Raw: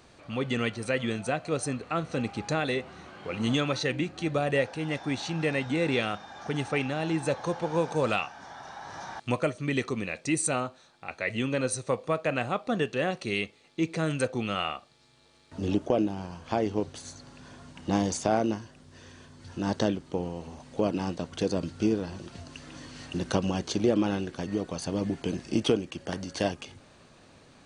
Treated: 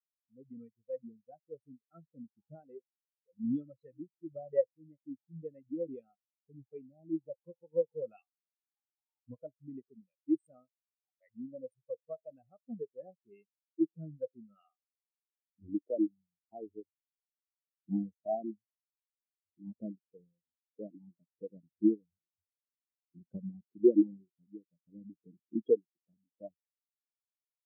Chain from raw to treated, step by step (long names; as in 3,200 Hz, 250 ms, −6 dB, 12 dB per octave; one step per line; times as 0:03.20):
adaptive Wiener filter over 15 samples
every bin expanded away from the loudest bin 4 to 1
level −2.5 dB